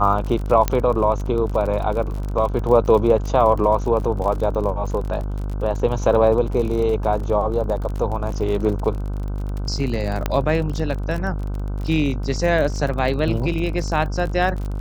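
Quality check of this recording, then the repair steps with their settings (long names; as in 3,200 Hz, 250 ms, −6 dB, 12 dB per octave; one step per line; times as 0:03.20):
mains buzz 50 Hz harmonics 31 −25 dBFS
surface crackle 41 per second −27 dBFS
0:00.68: click −5 dBFS
0:10.26: click −7 dBFS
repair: click removal
hum removal 50 Hz, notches 31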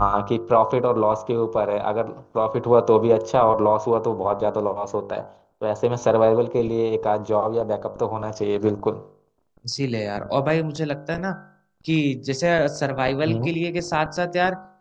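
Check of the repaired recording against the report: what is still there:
none of them is left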